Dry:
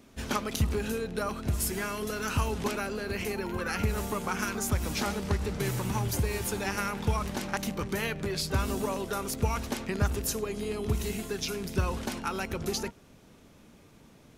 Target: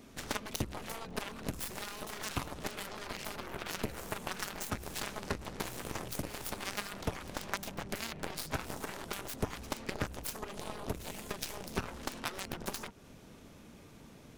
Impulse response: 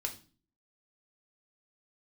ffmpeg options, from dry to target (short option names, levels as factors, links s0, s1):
-af "acompressor=threshold=0.0112:ratio=4,aeval=exprs='0.0668*(cos(1*acos(clip(val(0)/0.0668,-1,1)))-cos(1*PI/2))+0.00335*(cos(6*acos(clip(val(0)/0.0668,-1,1)))-cos(6*PI/2))+0.015*(cos(7*acos(clip(val(0)/0.0668,-1,1)))-cos(7*PI/2))+0.00473*(cos(8*acos(clip(val(0)/0.0668,-1,1)))-cos(8*PI/2))':c=same,volume=2.11"